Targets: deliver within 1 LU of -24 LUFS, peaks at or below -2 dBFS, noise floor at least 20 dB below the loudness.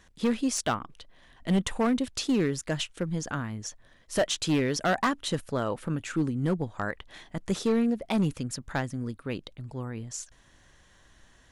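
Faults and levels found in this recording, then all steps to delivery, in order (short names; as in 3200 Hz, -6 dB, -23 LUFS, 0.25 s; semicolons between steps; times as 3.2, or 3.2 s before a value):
clipped 1.6%; flat tops at -19.5 dBFS; loudness -29.5 LUFS; peak -19.5 dBFS; loudness target -24.0 LUFS
-> clip repair -19.5 dBFS; gain +5.5 dB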